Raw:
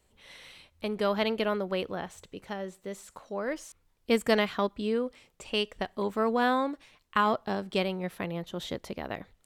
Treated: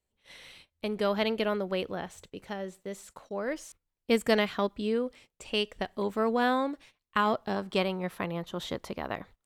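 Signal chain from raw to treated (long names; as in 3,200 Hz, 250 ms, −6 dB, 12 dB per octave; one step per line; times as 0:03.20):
noise gate −52 dBFS, range −16 dB
parametric band 1,100 Hz −2 dB 0.76 octaves, from 0:07.56 +6 dB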